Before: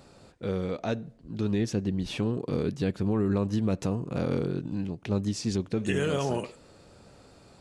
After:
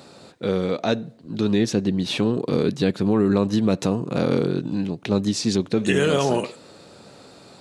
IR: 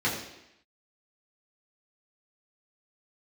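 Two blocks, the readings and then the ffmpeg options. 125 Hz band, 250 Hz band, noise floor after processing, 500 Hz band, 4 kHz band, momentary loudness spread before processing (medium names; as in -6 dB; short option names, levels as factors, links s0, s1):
+4.0 dB, +7.5 dB, -48 dBFS, +8.5 dB, +11.0 dB, 7 LU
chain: -af "highpass=150,equalizer=f=3900:w=4.8:g=6.5,volume=2.66"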